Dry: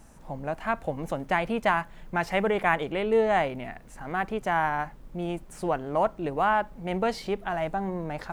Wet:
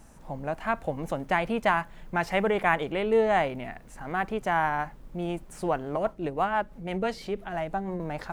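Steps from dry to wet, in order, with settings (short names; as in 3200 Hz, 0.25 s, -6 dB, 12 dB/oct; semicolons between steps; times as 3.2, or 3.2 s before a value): 5.96–8 rotary speaker horn 6 Hz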